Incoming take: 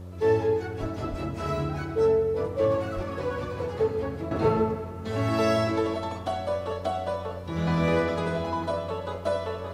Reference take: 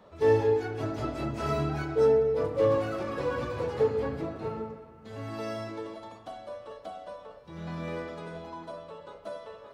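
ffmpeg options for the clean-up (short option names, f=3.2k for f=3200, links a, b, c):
-filter_complex "[0:a]bandreject=f=90.4:t=h:w=4,bandreject=f=180.8:t=h:w=4,bandreject=f=271.2:t=h:w=4,bandreject=f=361.6:t=h:w=4,bandreject=f=452:t=h:w=4,bandreject=f=542.4:t=h:w=4,asplit=3[a][b][c];[a]afade=t=out:st=0.8:d=0.02[d];[b]highpass=f=140:w=0.5412,highpass=f=140:w=1.3066,afade=t=in:st=0.8:d=0.02,afade=t=out:st=0.92:d=0.02[e];[c]afade=t=in:st=0.92:d=0.02[f];[d][e][f]amix=inputs=3:normalize=0,asplit=3[g][h][i];[g]afade=t=out:st=1.1:d=0.02[j];[h]highpass=f=140:w=0.5412,highpass=f=140:w=1.3066,afade=t=in:st=1.1:d=0.02,afade=t=out:st=1.22:d=0.02[k];[i]afade=t=in:st=1.22:d=0.02[l];[j][k][l]amix=inputs=3:normalize=0,asplit=3[m][n][o];[m]afade=t=out:st=2.95:d=0.02[p];[n]highpass=f=140:w=0.5412,highpass=f=140:w=1.3066,afade=t=in:st=2.95:d=0.02,afade=t=out:st=3.07:d=0.02[q];[o]afade=t=in:st=3.07:d=0.02[r];[p][q][r]amix=inputs=3:normalize=0,agate=range=-21dB:threshold=-27dB,asetnsamples=n=441:p=0,asendcmd='4.31 volume volume -12dB',volume=0dB"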